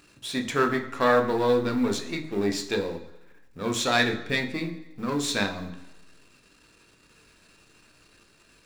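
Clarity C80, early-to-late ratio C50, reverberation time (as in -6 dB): 13.5 dB, 11.0 dB, 1.0 s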